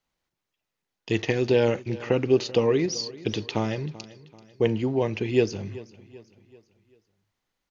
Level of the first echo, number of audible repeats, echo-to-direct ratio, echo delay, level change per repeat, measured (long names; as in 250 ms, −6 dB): −19.0 dB, 3, −18.0 dB, 386 ms, −7.0 dB